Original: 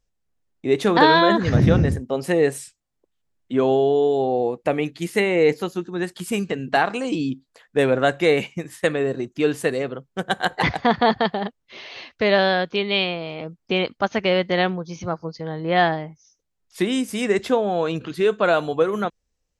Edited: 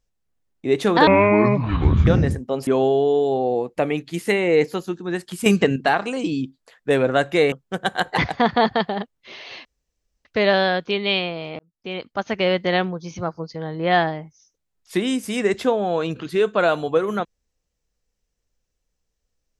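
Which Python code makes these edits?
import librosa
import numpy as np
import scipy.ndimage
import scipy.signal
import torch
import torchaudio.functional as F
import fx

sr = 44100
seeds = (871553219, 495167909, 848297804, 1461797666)

y = fx.edit(x, sr, fx.speed_span(start_s=1.07, length_s=0.61, speed=0.61),
    fx.cut(start_s=2.28, length_s=1.27),
    fx.clip_gain(start_s=6.34, length_s=0.3, db=8.5),
    fx.cut(start_s=8.4, length_s=1.57),
    fx.insert_room_tone(at_s=12.1, length_s=0.6),
    fx.fade_in_span(start_s=13.44, length_s=0.9), tone=tone)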